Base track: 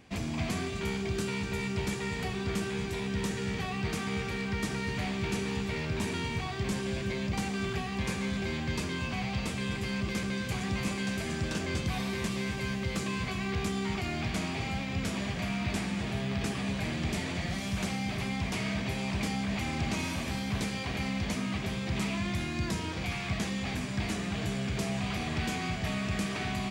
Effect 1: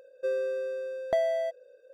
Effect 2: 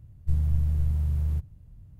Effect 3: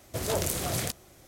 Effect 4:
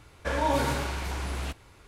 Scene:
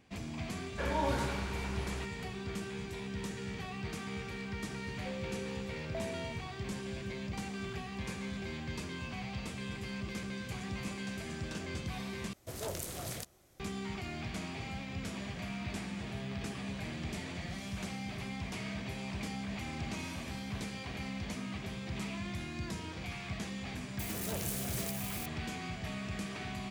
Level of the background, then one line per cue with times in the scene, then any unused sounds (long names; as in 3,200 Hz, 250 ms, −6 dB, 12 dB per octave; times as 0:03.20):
base track −7.5 dB
0:00.53: mix in 4 −7 dB + high-shelf EQ 8,800 Hz −9 dB
0:04.82: mix in 1 −15.5 dB
0:12.33: overwrite with 3 −10.5 dB
0:23.99: mix in 3 −13 dB + spike at every zero crossing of −23.5 dBFS
not used: 2